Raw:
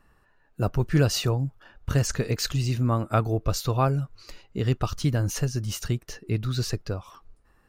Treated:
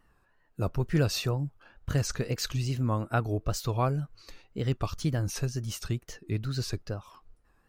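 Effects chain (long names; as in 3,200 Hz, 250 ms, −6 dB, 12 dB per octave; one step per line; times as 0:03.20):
tape wow and flutter 110 cents
level −4.5 dB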